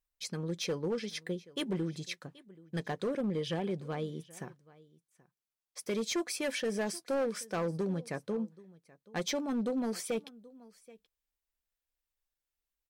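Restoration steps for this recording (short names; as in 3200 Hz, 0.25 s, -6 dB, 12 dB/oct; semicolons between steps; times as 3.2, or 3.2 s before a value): clip repair -27.5 dBFS; inverse comb 0.779 s -22.5 dB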